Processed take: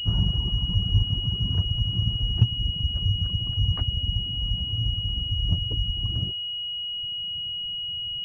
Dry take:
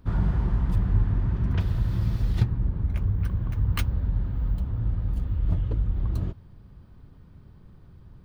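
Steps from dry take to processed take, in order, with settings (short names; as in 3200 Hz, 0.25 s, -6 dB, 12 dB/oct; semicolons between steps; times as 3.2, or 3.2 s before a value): reverb removal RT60 1.8 s; bell 110 Hz +8.5 dB 1.9 oct; pulse-width modulation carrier 2900 Hz; gain -4 dB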